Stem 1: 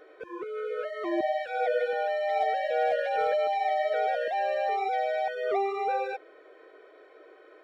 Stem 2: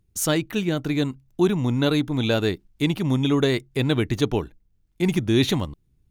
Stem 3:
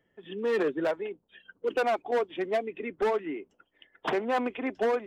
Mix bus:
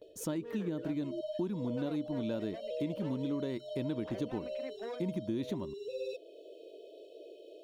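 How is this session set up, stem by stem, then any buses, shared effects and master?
+2.5 dB, 0.00 s, no send, brick-wall band-stop 710–2,500 Hz; noise gate with hold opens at −48 dBFS; high-shelf EQ 3,900 Hz +7 dB; automatic ducking −12 dB, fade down 0.20 s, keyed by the second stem
−18.0 dB, 0.00 s, no send, hollow resonant body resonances 220/310/540/930 Hz, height 13 dB, ringing for 30 ms
−16.5 dB, 0.00 s, no send, no processing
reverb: not used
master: downward compressor, threshold −32 dBFS, peak gain reduction 10.5 dB

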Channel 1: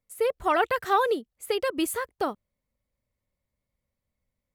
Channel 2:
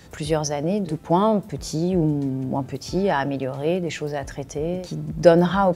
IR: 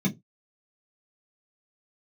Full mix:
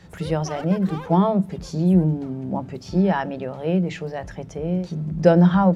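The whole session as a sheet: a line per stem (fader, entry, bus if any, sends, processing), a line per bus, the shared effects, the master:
0:00.95 −9.5 dB → 0:01.65 −21 dB, 0.00 s, no send, echo send −12.5 dB, hard clipping −23 dBFS, distortion −10 dB
−1.5 dB, 0.00 s, send −24 dB, no echo send, high-shelf EQ 7,400 Hz −10 dB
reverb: on, pre-delay 3 ms
echo: single-tap delay 97 ms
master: high-shelf EQ 5,800 Hz −5 dB

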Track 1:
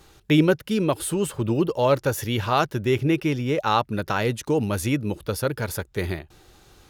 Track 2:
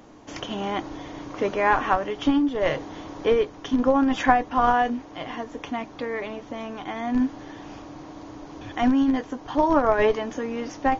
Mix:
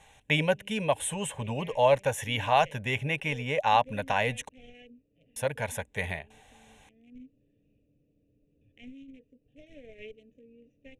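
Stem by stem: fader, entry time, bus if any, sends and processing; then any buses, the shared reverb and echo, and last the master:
+2.5 dB, 0.00 s, muted 0:04.49–0:05.36, no send, no processing
−11.5 dB, 0.00 s, no send, adaptive Wiener filter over 41 samples; Chebyshev band-stop filter 450–2,400 Hz, order 3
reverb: not used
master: low-pass filter 9,500 Hz 24 dB per octave; low-shelf EQ 250 Hz −11.5 dB; phaser with its sweep stopped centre 1,300 Hz, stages 6

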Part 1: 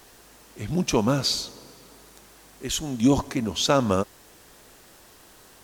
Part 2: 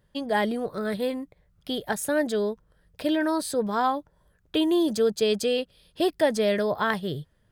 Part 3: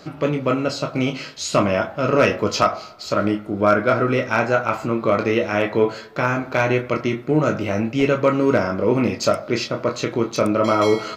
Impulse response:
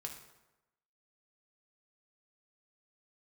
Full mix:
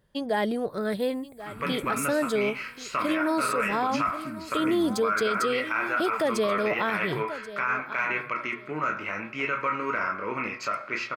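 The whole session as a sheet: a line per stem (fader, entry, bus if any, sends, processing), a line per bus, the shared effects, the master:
−6.5 dB, 0.90 s, no send, no echo send, Chebyshev band-stop filter 340–7,900 Hz, order 5
−0.5 dB, 0.00 s, no send, echo send −17 dB, low-shelf EQ 480 Hz +5 dB
−15.5 dB, 1.40 s, send −10 dB, no echo send, flat-topped bell 1,600 Hz +15 dB; hum removal 120.9 Hz, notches 37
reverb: on, RT60 1.0 s, pre-delay 3 ms
echo: repeating echo 1,083 ms, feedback 22%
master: low-shelf EQ 180 Hz −9.5 dB; brickwall limiter −17 dBFS, peak gain reduction 10.5 dB

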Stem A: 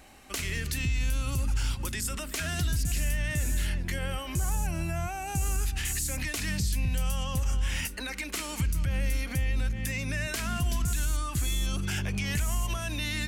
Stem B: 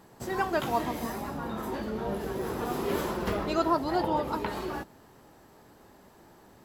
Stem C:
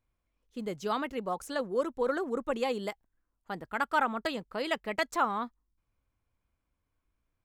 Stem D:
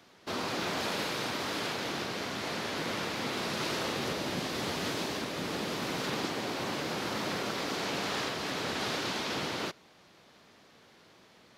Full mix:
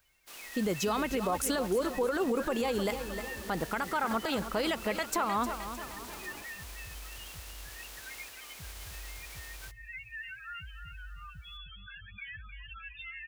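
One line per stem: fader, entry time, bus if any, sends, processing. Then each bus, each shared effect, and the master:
−19.5 dB, 0.00 s, no send, echo send −8.5 dB, flat-topped bell 2,100 Hz +15 dB; spectral peaks only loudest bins 4
−17.0 dB, 1.60 s, no send, no echo send, compressor whose output falls as the input rises −34 dBFS
0.0 dB, 0.00 s, no send, echo send −12.5 dB, downward compressor, threshold −35 dBFS, peak gain reduction 12.5 dB; high-shelf EQ 9,700 Hz +10 dB; automatic gain control gain up to 11.5 dB
−14.0 dB, 0.00 s, no send, no echo send, compressing power law on the bin magnitudes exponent 0.13; high-pass filter 290 Hz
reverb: not used
echo: repeating echo 308 ms, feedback 46%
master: brickwall limiter −21 dBFS, peak gain reduction 10.5 dB

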